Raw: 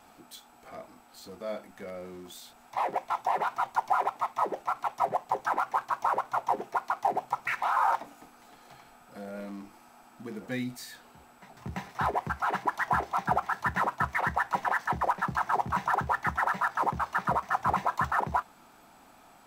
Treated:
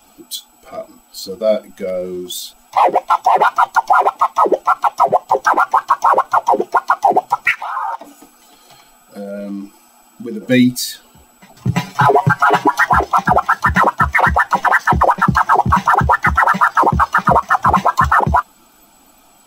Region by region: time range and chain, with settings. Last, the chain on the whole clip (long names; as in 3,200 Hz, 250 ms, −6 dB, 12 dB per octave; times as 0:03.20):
0:07.51–0:10.47: downward compressor 2.5 to 1, threshold −39 dBFS + low-shelf EQ 120 Hz −5.5 dB
0:11.67–0:12.87: comb filter 7.1 ms, depth 80% + hum removal 189.5 Hz, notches 32
whole clip: spectral dynamics exaggerated over time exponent 1.5; notch filter 1,700 Hz, Q 22; boost into a limiter +25 dB; level −1 dB